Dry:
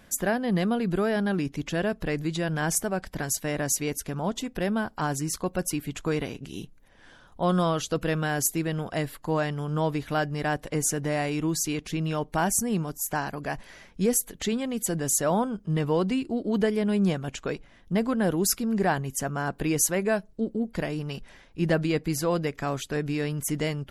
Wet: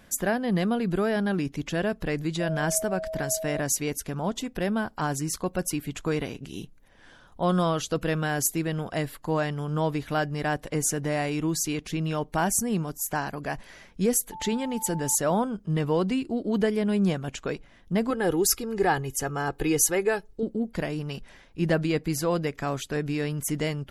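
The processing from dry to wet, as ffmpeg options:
ffmpeg -i in.wav -filter_complex "[0:a]asettb=1/sr,asplit=3[link_01][link_02][link_03];[link_01]atrim=end=2.404[link_04];[link_02]atrim=start=2.4:end=3.6,asetpts=PTS-STARTPTS,afade=type=in:duration=0.004:curve=qsin,afade=type=out:start_time=1.196:duration=0.004:curve=qsin,aeval=exprs='val(0)+0.0282*sin(2*PI*640*n/s)':channel_layout=same[link_05];[link_03]atrim=start=3.596[link_06];[link_04][link_05]acrossfade=duration=0.004:curve1=hsin:curve2=qsin[link_07];[link_07][link_06]acrossfade=duration=0.004:curve1=qsin:curve2=hsin,asettb=1/sr,asplit=3[link_08][link_09][link_10];[link_08]atrim=end=14.324[link_11];[link_09]atrim=start=14.32:end=15.15,asetpts=PTS-STARTPTS,afade=type=in:duration=0.004:curve=qsin,afade=type=out:start_time=0.826:duration=0.004:curve=qsin,aeval=exprs='val(0)+0.0141*sin(2*PI*880*n/s)':channel_layout=same[link_12];[link_10]atrim=start=15.146[link_13];[link_11][link_12]acrossfade=duration=0.004:curve1=hsin:curve2=qsin[link_14];[link_14][link_13]acrossfade=duration=0.004:curve1=qsin:curve2=hsin,asettb=1/sr,asplit=3[link_15][link_16][link_17];[link_15]atrim=end=18.104[link_18];[link_16]atrim=start=18.1:end=20.43,asetpts=PTS-STARTPTS,afade=type=in:duration=0.004:curve=qsin,afade=type=out:start_time=2.326:duration=0.004:curve=qsin,aecho=1:1:2.4:0.65,atrim=end_sample=102753[link_19];[link_17]atrim=start=20.426[link_20];[link_18][link_19]acrossfade=duration=0.004:curve1=hsin:curve2=qsin[link_21];[link_21][link_20]acrossfade=duration=0.004:curve1=qsin:curve2=hsin" out.wav

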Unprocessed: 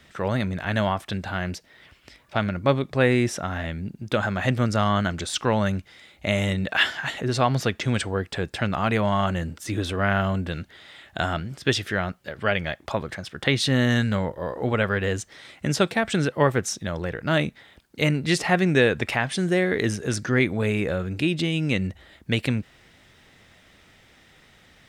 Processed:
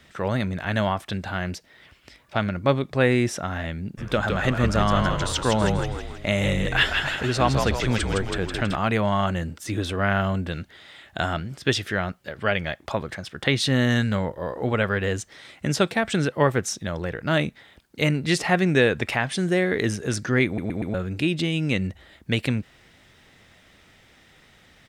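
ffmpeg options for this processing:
ffmpeg -i in.wav -filter_complex "[0:a]asplit=3[link_01][link_02][link_03];[link_01]afade=type=out:start_time=3.97:duration=0.02[link_04];[link_02]asplit=8[link_05][link_06][link_07][link_08][link_09][link_10][link_11][link_12];[link_06]adelay=162,afreqshift=-61,volume=-4.5dB[link_13];[link_07]adelay=324,afreqshift=-122,volume=-10.3dB[link_14];[link_08]adelay=486,afreqshift=-183,volume=-16.2dB[link_15];[link_09]adelay=648,afreqshift=-244,volume=-22dB[link_16];[link_10]adelay=810,afreqshift=-305,volume=-27.9dB[link_17];[link_11]adelay=972,afreqshift=-366,volume=-33.7dB[link_18];[link_12]adelay=1134,afreqshift=-427,volume=-39.6dB[link_19];[link_05][link_13][link_14][link_15][link_16][link_17][link_18][link_19]amix=inputs=8:normalize=0,afade=type=in:start_time=3.97:duration=0.02,afade=type=out:start_time=8.75:duration=0.02[link_20];[link_03]afade=type=in:start_time=8.75:duration=0.02[link_21];[link_04][link_20][link_21]amix=inputs=3:normalize=0,asplit=5[link_22][link_23][link_24][link_25][link_26];[link_22]atrim=end=20.582[link_27];[link_23]atrim=start=20.458:end=20.582[link_28];[link_24]atrim=start=20.458:end=20.582[link_29];[link_25]atrim=start=20.458:end=20.582[link_30];[link_26]atrim=start=20.938[link_31];[link_27][link_28]acrossfade=duration=0.004:curve1=hsin:curve2=hsin[link_32];[link_32][link_29]acrossfade=duration=0.004:curve1=hsin:curve2=hsin[link_33];[link_33][link_30]acrossfade=duration=0.004:curve1=hsin:curve2=hsin[link_34];[link_34][link_31]acrossfade=duration=0.004:curve1=hsin:curve2=hsin" out.wav

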